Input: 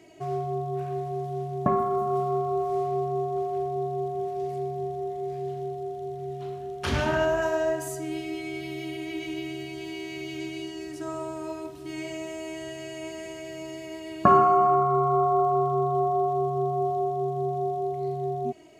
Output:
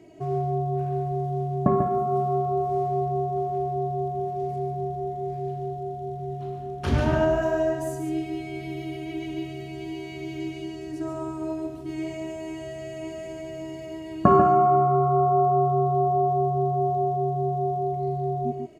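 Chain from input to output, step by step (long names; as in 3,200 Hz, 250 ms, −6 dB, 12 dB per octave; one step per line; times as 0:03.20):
tilt shelving filter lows +6 dB, about 730 Hz
on a send: single-tap delay 142 ms −6.5 dB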